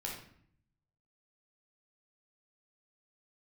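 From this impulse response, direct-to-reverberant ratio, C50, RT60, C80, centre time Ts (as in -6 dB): -2.5 dB, 3.5 dB, 0.60 s, 7.5 dB, 38 ms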